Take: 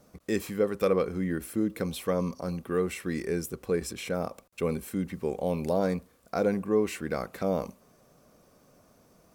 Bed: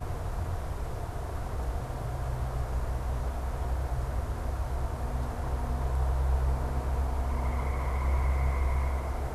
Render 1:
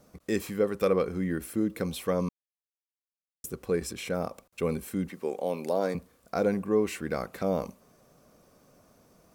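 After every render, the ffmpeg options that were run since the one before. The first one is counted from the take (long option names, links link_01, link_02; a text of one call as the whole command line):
ffmpeg -i in.wav -filter_complex "[0:a]asettb=1/sr,asplit=3[link_01][link_02][link_03];[link_01]atrim=end=5.094[link_04];[link_02]atrim=start=5.09:end=5.95,asetpts=PTS-STARTPTS,afade=type=in:duration=0.004:curve=qsin,afade=type=out:start_time=0.856:duration=0.004:curve=qsin,highpass=280[link_05];[link_03]atrim=start=5.946[link_06];[link_04][link_05]acrossfade=duration=0.004:curve1=hsin:curve2=qsin[link_07];[link_07][link_06]acrossfade=duration=0.004:curve1=qsin:curve2=hsin,asplit=3[link_08][link_09][link_10];[link_08]atrim=end=2.29,asetpts=PTS-STARTPTS,afade=type=out:start_time=2.286:duration=0.004:curve=hsin[link_11];[link_09]atrim=start=2.29:end=3.44,asetpts=PTS-STARTPTS,volume=0[link_12];[link_10]atrim=start=3.44,asetpts=PTS-STARTPTS,afade=type=in:duration=0.004:curve=hsin[link_13];[link_11][link_12][link_13]concat=n=3:v=0:a=1" out.wav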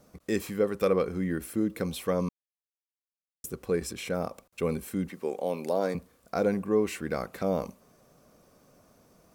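ffmpeg -i in.wav -af anull out.wav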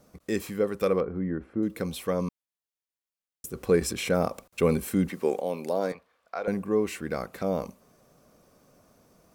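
ffmpeg -i in.wav -filter_complex "[0:a]asettb=1/sr,asplit=3[link_01][link_02][link_03];[link_01]atrim=end=1.004[link_04];[link_02]atrim=start=1:end=1.63,asetpts=PTS-STARTPTS,afade=type=in:duration=0.004:curve=qsin,afade=type=out:start_time=0.626:duration=0.004:curve=qsin,lowpass=1300[link_05];[link_03]atrim=start=1.626[link_06];[link_04][link_05]acrossfade=duration=0.004:curve1=hsin:curve2=qsin[link_07];[link_07][link_06]acrossfade=duration=0.004:curve1=qsin:curve2=hsin,asettb=1/sr,asplit=3[link_08][link_09][link_10];[link_08]atrim=end=3.554[link_11];[link_09]atrim=start=3.55:end=5.41,asetpts=PTS-STARTPTS,afade=type=in:duration=0.004:curve=qsin,afade=type=out:start_time=1.856:duration=0.004:curve=qsin,acontrast=56[link_12];[link_10]atrim=start=5.406[link_13];[link_11][link_12]acrossfade=duration=0.004:curve1=hsin:curve2=qsin[link_14];[link_14][link_13]acrossfade=duration=0.004:curve1=qsin:curve2=hsin,asettb=1/sr,asplit=3[link_15][link_16][link_17];[link_15]atrim=end=5.924[link_18];[link_16]atrim=start=5.92:end=6.48,asetpts=PTS-STARTPTS,afade=type=in:duration=0.004:curve=qsin,afade=type=out:start_time=0.556:duration=0.004:curve=qsin,acrossover=split=570 4100:gain=0.0891 1 0.126[link_19][link_20][link_21];[link_19][link_20][link_21]amix=inputs=3:normalize=0[link_22];[link_17]atrim=start=6.476[link_23];[link_18][link_22]acrossfade=duration=0.004:curve1=hsin:curve2=qsin[link_24];[link_24][link_23]acrossfade=duration=0.004:curve1=qsin:curve2=hsin" out.wav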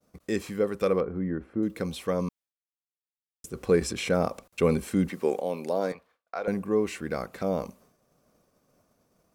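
ffmpeg -i in.wav -filter_complex "[0:a]agate=range=-33dB:threshold=-53dB:ratio=3:detection=peak,acrossover=split=9500[link_01][link_02];[link_02]acompressor=threshold=-57dB:ratio=4:attack=1:release=60[link_03];[link_01][link_03]amix=inputs=2:normalize=0" out.wav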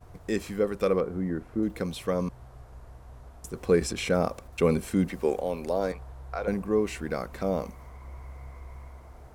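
ffmpeg -i in.wav -i bed.wav -filter_complex "[1:a]volume=-15.5dB[link_01];[0:a][link_01]amix=inputs=2:normalize=0" out.wav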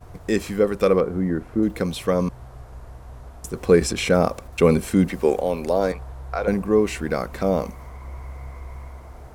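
ffmpeg -i in.wav -af "volume=7dB" out.wav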